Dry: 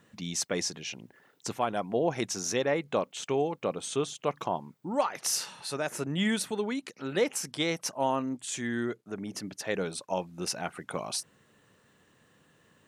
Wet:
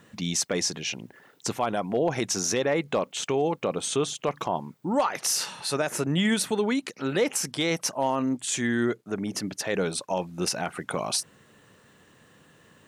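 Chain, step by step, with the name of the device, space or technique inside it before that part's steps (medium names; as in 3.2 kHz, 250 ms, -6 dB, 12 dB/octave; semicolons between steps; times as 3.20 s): clipper into limiter (hard clipper -17.5 dBFS, distortion -29 dB; peak limiter -22.5 dBFS, peak gain reduction 5 dB); trim +7 dB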